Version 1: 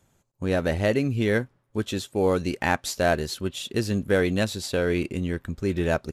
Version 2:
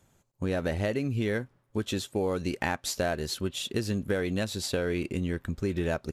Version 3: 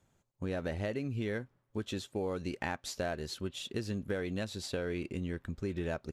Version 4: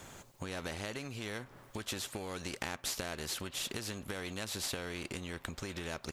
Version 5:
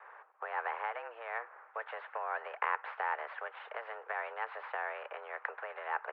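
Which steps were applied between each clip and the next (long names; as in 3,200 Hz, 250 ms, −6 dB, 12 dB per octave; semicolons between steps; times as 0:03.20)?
downward compressor, threshold −25 dBFS, peak gain reduction 9 dB
high-shelf EQ 11,000 Hz −11.5 dB; level −6.5 dB
downward compressor 6 to 1, threshold −45 dBFS, peak gain reduction 14.5 dB; every bin compressed towards the loudest bin 2 to 1; level +13 dB
single-sideband voice off tune +230 Hz 230–2,200 Hz; flat-topped bell 1,200 Hz +9 dB 1.3 octaves; multiband upward and downward expander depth 40%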